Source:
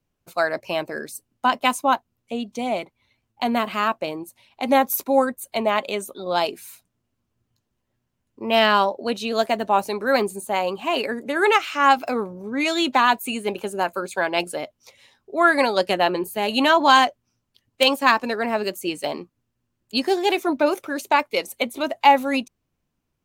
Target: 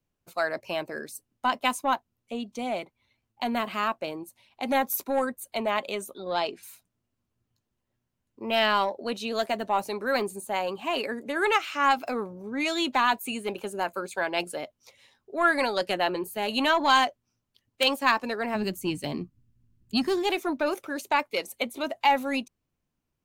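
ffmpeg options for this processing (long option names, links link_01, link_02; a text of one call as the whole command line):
ffmpeg -i in.wav -filter_complex "[0:a]asettb=1/sr,asplit=3[link_01][link_02][link_03];[link_01]atrim=end=6.184[link_04];[link_02]atrim=start=6.18:end=6.63,asetpts=PTS-STARTPTS,afade=type=in:duration=0.004:curve=qsin,afade=type=out:start_time=0.446:duration=0.004:curve=qsin,lowpass=5500[link_05];[link_03]atrim=start=6.626[link_06];[link_04][link_05]acrossfade=duration=0.004:curve1=hsin:curve2=qsin[link_07];[link_07][link_06]acrossfade=duration=0.004:curve1=qsin:curve2=hsin,asplit=3[link_08][link_09][link_10];[link_08]afade=type=out:start_time=18.54:duration=0.02[link_11];[link_09]asubboost=boost=11.5:cutoff=200,afade=type=in:start_time=18.54:duration=0.02,afade=type=out:start_time=20.22:duration=0.02[link_12];[link_10]afade=type=in:start_time=20.22:duration=0.02[link_13];[link_11][link_12][link_13]amix=inputs=3:normalize=0,acrossover=split=990[link_14][link_15];[link_14]asoftclip=type=tanh:threshold=-16.5dB[link_16];[link_16][link_15]amix=inputs=2:normalize=0,volume=-5dB" out.wav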